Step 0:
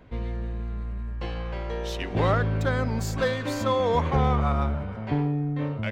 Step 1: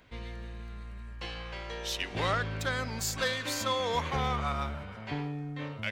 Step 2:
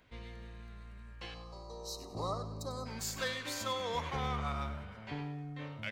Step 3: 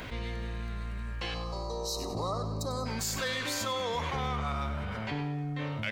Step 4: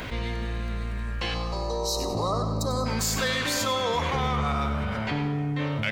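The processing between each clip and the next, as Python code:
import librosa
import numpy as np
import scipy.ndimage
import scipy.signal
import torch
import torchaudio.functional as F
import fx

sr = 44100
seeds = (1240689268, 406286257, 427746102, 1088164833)

y1 = fx.tilt_shelf(x, sr, db=-8.5, hz=1400.0)
y1 = y1 * 10.0 ** (-2.5 / 20.0)
y2 = fx.spec_box(y1, sr, start_s=1.34, length_s=1.52, low_hz=1300.0, high_hz=3800.0, gain_db=-27)
y2 = fx.echo_feedback(y2, sr, ms=97, feedback_pct=34, wet_db=-13.0)
y2 = y2 * 10.0 ** (-6.0 / 20.0)
y3 = fx.env_flatten(y2, sr, amount_pct=70)
y3 = y3 * 10.0 ** (1.5 / 20.0)
y4 = fx.rev_freeverb(y3, sr, rt60_s=2.5, hf_ratio=0.35, predelay_ms=50, drr_db=10.5)
y4 = y4 * 10.0 ** (6.0 / 20.0)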